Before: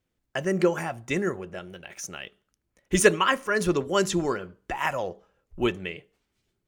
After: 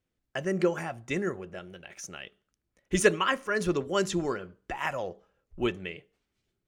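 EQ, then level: peaking EQ 940 Hz -2.5 dB 0.34 oct; treble shelf 12 kHz -10 dB; -3.5 dB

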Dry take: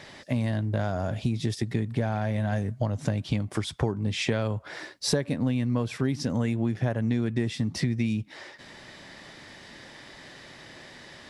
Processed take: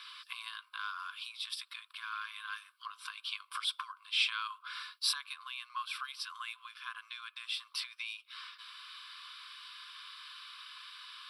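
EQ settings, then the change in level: brick-wall FIR high-pass 990 Hz; static phaser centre 1.9 kHz, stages 6; +3.5 dB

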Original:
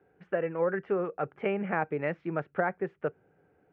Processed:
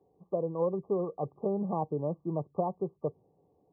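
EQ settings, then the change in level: dynamic bell 120 Hz, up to +6 dB, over -48 dBFS, Q 0.88; brick-wall FIR low-pass 1.2 kHz; -2.0 dB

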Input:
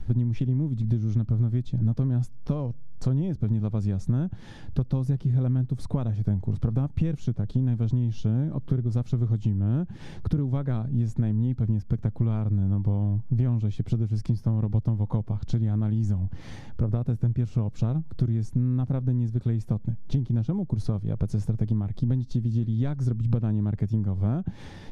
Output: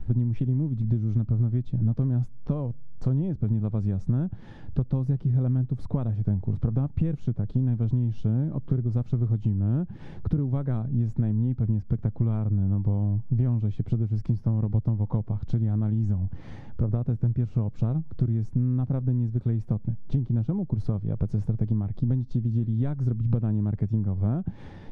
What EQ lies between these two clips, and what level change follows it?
low-pass 1.4 kHz 6 dB/octave; 0.0 dB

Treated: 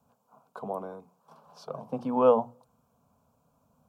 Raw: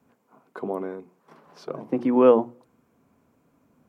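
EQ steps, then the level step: static phaser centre 810 Hz, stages 4; 0.0 dB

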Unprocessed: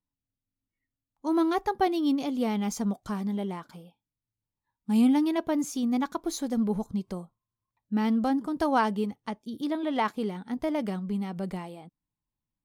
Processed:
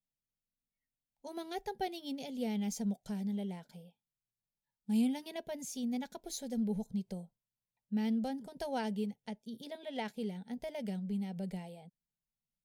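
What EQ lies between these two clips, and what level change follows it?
static phaser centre 310 Hz, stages 6; dynamic bell 660 Hz, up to -4 dB, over -41 dBFS, Q 1.1; -5.0 dB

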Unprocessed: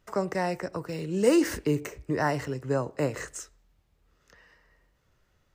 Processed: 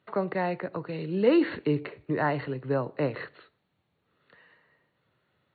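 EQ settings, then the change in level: high-pass 110 Hz 24 dB/octave; brick-wall FIR low-pass 4.5 kHz; 0.0 dB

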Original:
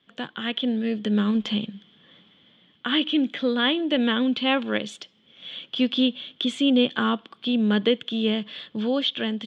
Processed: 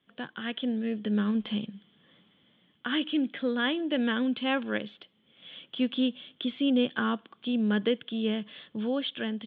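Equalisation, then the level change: dynamic bell 1.6 kHz, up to +5 dB, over -47 dBFS, Q 6; resonant low-pass 3.7 kHz, resonance Q 1.7; distance through air 460 m; -4.5 dB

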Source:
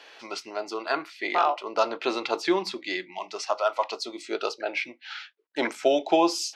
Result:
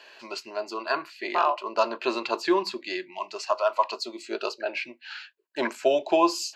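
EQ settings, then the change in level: rippled EQ curve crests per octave 1.4, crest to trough 8 dB; dynamic bell 1.1 kHz, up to +5 dB, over -39 dBFS, Q 3.6; -2.0 dB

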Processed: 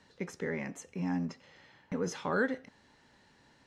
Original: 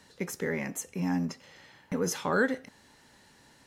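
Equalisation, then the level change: distance through air 91 m; -3.5 dB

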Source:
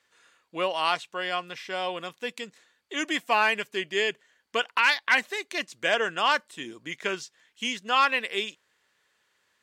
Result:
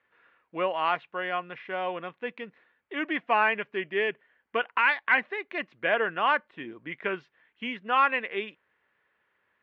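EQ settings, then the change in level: low-pass 2.4 kHz 24 dB/octave; 0.0 dB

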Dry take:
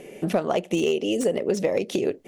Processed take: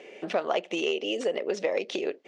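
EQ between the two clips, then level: band-pass 390–5700 Hz; distance through air 89 m; tilt shelf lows -3.5 dB, about 1.2 kHz; 0.0 dB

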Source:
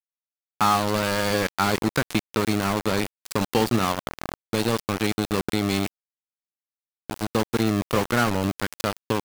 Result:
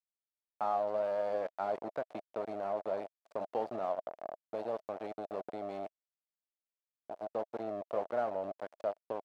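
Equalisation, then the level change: band-pass filter 640 Hz, Q 6.6; 0.0 dB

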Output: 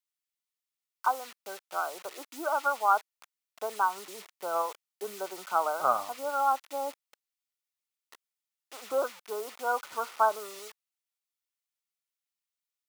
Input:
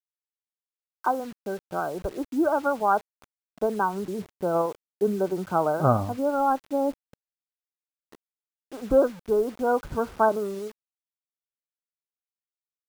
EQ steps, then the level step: high-pass 1.2 kHz 12 dB/octave; band-stop 1.6 kHz, Q 7.6; +4.5 dB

